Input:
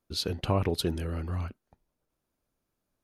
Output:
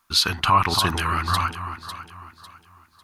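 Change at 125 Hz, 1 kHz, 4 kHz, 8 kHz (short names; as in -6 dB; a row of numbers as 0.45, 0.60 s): +3.5, +19.0, +13.5, +13.0 dB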